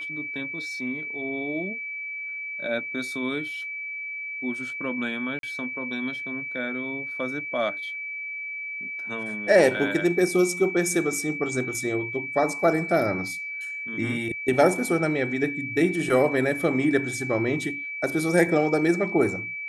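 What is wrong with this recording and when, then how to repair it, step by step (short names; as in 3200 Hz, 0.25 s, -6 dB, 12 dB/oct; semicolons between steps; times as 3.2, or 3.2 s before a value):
tone 2300 Hz -31 dBFS
5.39–5.43 gap 42 ms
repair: notch 2300 Hz, Q 30; interpolate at 5.39, 42 ms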